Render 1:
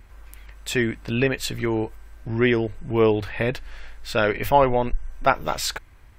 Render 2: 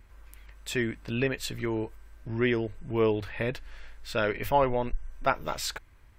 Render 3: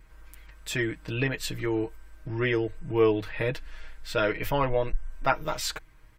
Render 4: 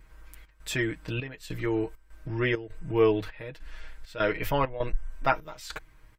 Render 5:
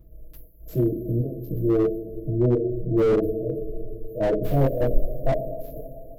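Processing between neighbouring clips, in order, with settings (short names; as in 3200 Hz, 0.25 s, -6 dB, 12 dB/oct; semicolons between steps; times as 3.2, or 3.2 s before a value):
notch 760 Hz, Q 13; gain -6.5 dB
comb 6.4 ms, depth 75%
step gate "xxx.xxxx..xxx." 100 bpm -12 dB
FFT band-reject 720–11000 Hz; two-slope reverb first 0.36 s, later 3.3 s, from -18 dB, DRR -8.5 dB; slew limiter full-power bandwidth 60 Hz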